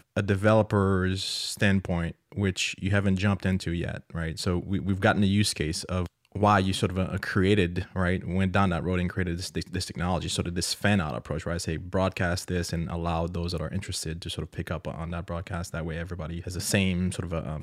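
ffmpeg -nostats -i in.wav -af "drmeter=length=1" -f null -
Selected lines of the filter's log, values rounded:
Channel 1: DR: 13.0
Overall DR: 13.0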